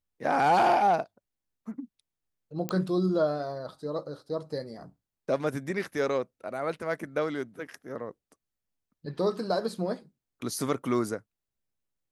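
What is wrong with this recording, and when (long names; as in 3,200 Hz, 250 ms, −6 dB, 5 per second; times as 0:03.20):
0:02.69: click −16 dBFS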